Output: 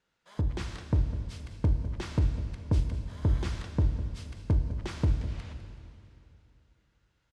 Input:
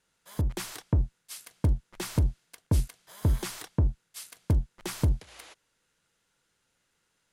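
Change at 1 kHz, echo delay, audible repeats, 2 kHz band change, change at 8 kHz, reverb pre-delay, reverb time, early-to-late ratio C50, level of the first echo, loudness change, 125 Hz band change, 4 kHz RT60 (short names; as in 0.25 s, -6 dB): -1.0 dB, 0.204 s, 1, -1.5 dB, -12.0 dB, 6 ms, 2.9 s, 7.0 dB, -13.5 dB, -1.0 dB, 0.0 dB, 2.7 s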